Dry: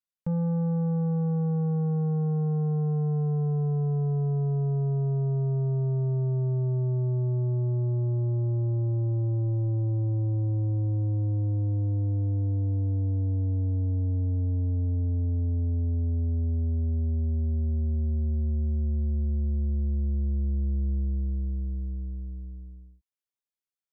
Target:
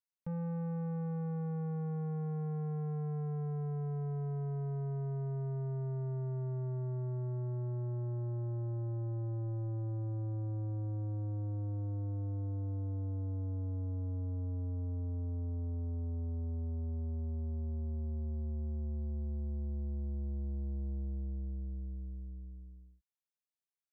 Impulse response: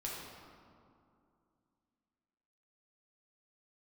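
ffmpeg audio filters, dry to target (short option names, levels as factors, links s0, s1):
-af "asoftclip=type=tanh:threshold=0.0531,volume=0.398"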